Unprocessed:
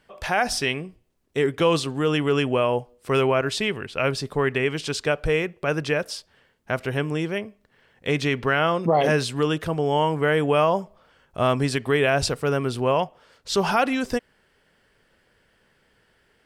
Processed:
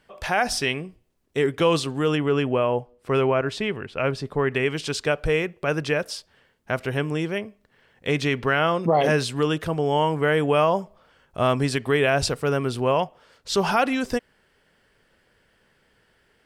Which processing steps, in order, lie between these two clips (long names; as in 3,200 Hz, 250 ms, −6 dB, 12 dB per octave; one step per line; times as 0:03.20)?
0:02.15–0:04.52: high-shelf EQ 3,500 Hz −11 dB